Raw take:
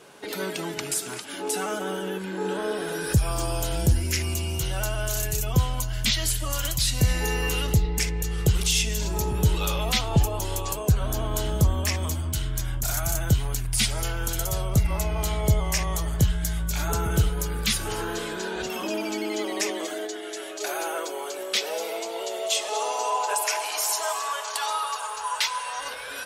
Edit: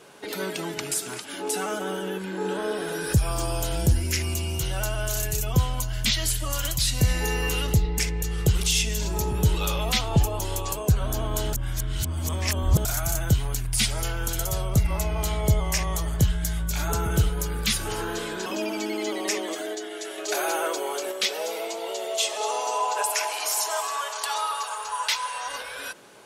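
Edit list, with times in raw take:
0:11.53–0:12.85: reverse
0:18.46–0:18.78: remove
0:20.50–0:21.44: clip gain +3.5 dB

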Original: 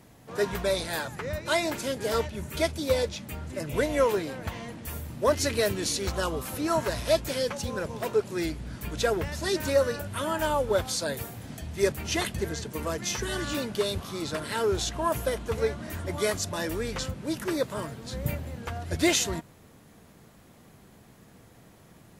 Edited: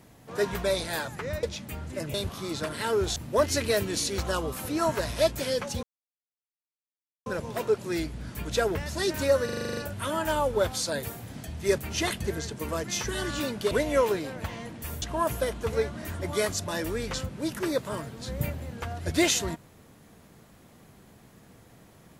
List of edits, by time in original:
0:01.43–0:03.03: remove
0:03.74–0:05.05: swap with 0:13.85–0:14.87
0:07.72: splice in silence 1.43 s
0:09.91: stutter 0.04 s, 9 plays

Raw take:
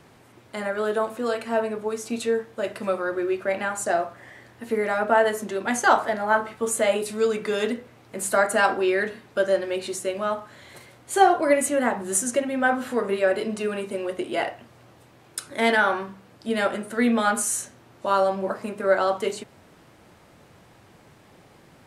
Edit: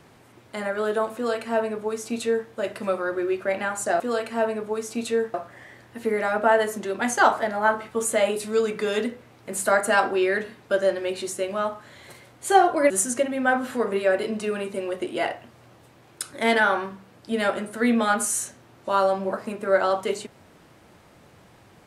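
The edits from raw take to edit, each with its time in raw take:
0:01.15–0:02.49: duplicate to 0:04.00
0:11.56–0:12.07: remove

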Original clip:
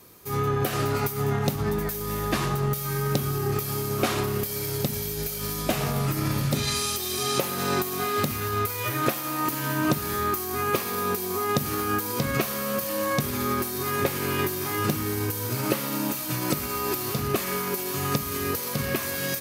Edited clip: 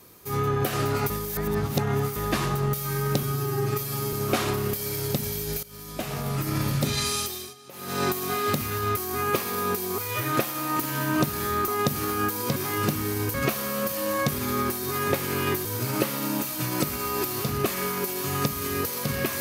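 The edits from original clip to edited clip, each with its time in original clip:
0:01.10–0:02.16: reverse
0:03.23–0:03.83: time-stretch 1.5×
0:05.33–0:06.31: fade in, from −17.5 dB
0:06.90–0:07.74: duck −23.5 dB, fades 0.35 s
0:10.37–0:11.38: move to 0:08.67
0:14.57–0:15.35: move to 0:12.26

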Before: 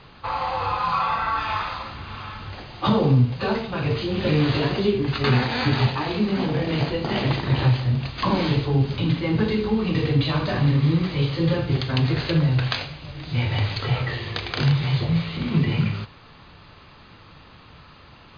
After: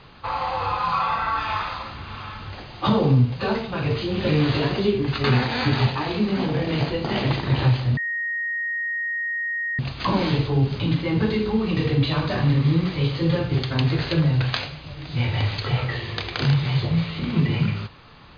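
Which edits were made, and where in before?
0:07.97: insert tone 1,870 Hz −23.5 dBFS 1.82 s

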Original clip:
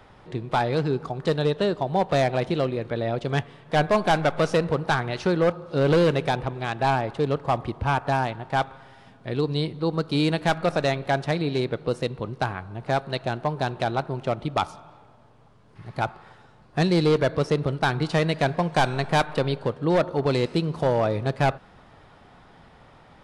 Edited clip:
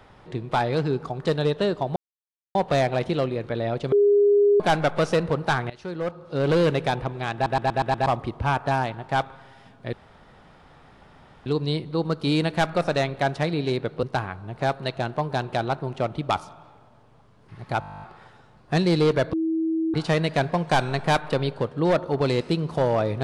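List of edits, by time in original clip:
0:01.96: splice in silence 0.59 s
0:03.33–0:04.01: beep over 408 Hz −14 dBFS
0:05.11–0:06.11: fade in, from −17.5 dB
0:06.75: stutter in place 0.12 s, 6 plays
0:09.34: splice in room tone 1.53 s
0:11.91–0:12.30: remove
0:16.07: stutter 0.02 s, 12 plays
0:17.38–0:17.99: beep over 323 Hz −21 dBFS

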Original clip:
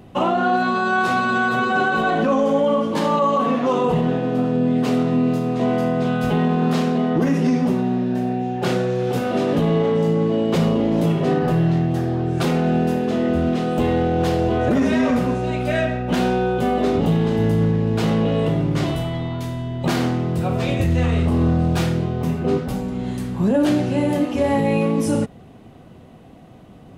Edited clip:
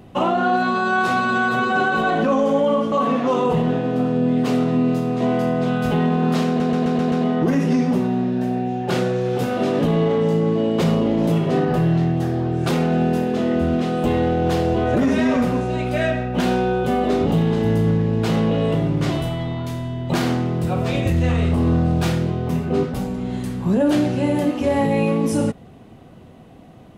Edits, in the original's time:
0:02.92–0:03.31: remove
0:06.86: stutter 0.13 s, 6 plays

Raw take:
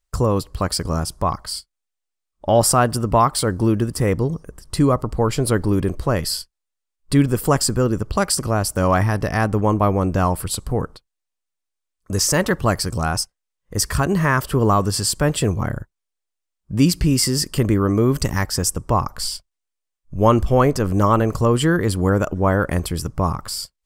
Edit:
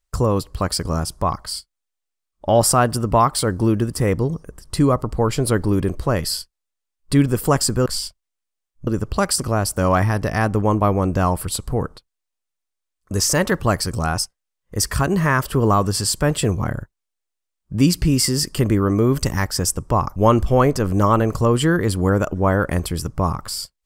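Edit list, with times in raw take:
0:19.15–0:20.16: move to 0:07.86

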